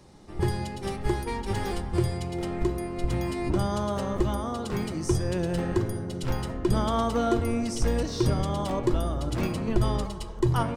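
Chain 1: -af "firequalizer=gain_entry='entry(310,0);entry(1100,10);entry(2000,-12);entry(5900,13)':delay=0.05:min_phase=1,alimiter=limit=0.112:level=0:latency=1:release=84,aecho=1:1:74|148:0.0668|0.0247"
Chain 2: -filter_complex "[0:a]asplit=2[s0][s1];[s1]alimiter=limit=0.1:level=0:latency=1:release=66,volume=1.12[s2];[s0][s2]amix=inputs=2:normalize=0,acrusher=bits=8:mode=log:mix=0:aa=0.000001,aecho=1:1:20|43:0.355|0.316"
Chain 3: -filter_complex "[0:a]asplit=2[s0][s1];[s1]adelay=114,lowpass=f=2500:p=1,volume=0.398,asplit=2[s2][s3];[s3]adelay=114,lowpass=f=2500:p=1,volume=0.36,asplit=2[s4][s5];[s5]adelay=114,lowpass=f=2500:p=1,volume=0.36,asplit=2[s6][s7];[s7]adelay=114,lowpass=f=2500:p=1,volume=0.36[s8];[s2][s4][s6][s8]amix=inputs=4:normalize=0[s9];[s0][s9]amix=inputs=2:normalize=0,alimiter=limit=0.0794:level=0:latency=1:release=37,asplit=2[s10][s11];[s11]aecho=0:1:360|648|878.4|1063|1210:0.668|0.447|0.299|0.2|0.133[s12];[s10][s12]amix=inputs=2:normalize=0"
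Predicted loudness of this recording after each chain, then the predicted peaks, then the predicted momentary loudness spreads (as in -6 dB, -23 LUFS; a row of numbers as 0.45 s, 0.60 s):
-29.5 LUFS, -22.5 LUFS, -29.0 LUFS; -18.5 dBFS, -6.5 dBFS, -15.5 dBFS; 3 LU, 4 LU, 2 LU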